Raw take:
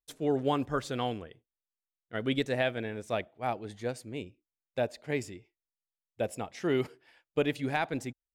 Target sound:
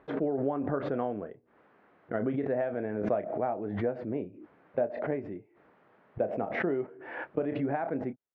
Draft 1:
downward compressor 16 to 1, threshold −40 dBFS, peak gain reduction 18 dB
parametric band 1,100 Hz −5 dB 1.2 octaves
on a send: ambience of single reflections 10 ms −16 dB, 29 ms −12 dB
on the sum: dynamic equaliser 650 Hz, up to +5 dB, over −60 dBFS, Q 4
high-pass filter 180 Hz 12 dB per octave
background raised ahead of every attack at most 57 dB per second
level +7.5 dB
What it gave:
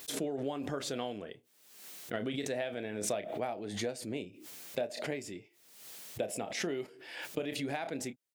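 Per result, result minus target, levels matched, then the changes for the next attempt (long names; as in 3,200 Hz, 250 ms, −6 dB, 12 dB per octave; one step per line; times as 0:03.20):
downward compressor: peak gain reduction +6 dB; 2,000 Hz band +3.5 dB
change: downward compressor 16 to 1, threshold −33.5 dBFS, peak gain reduction 12 dB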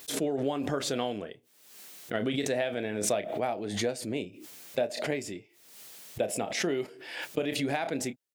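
2,000 Hz band +3.0 dB
add after downward compressor: low-pass filter 1,500 Hz 24 dB per octave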